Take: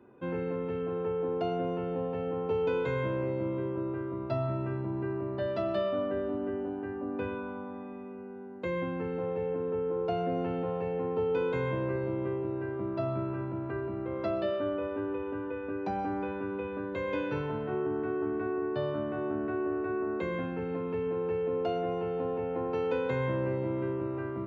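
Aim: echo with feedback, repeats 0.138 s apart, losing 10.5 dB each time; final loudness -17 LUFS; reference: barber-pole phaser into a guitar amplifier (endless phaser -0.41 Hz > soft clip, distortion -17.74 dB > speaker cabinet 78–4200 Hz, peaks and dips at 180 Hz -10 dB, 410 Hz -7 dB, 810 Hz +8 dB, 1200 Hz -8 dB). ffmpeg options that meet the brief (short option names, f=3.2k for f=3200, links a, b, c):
-filter_complex "[0:a]aecho=1:1:138|276|414:0.299|0.0896|0.0269,asplit=2[a][b];[b]afreqshift=-0.41[c];[a][c]amix=inputs=2:normalize=1,asoftclip=threshold=-28.5dB,highpass=78,equalizer=f=180:t=q:w=4:g=-10,equalizer=f=410:t=q:w=4:g=-7,equalizer=f=810:t=q:w=4:g=8,equalizer=f=1.2k:t=q:w=4:g=-8,lowpass=f=4.2k:w=0.5412,lowpass=f=4.2k:w=1.3066,volume=22.5dB"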